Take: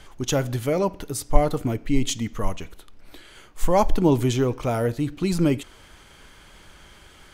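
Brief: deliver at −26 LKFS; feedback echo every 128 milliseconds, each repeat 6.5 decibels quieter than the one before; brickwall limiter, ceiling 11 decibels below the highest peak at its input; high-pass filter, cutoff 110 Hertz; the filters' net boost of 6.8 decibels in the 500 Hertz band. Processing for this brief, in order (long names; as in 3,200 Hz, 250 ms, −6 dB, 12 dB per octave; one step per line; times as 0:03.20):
high-pass filter 110 Hz
parametric band 500 Hz +8.5 dB
brickwall limiter −13 dBFS
repeating echo 128 ms, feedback 47%, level −6.5 dB
level −3 dB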